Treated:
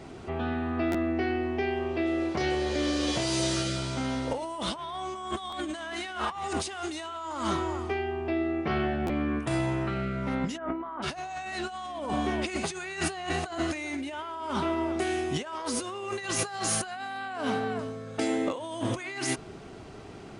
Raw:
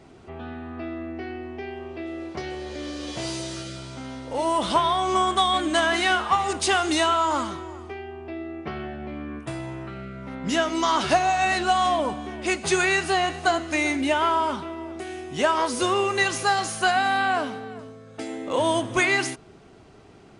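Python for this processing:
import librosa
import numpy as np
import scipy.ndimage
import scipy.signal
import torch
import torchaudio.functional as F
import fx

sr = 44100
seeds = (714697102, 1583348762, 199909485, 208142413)

y = fx.over_compress(x, sr, threshold_db=-32.0, ratio=-1.0)
y = fx.lowpass(y, sr, hz=1700.0, slope=24, at=(10.56, 11.02), fade=0.02)
y = fx.buffer_glitch(y, sr, at_s=(0.91, 5.49, 9.06), block=512, repeats=2)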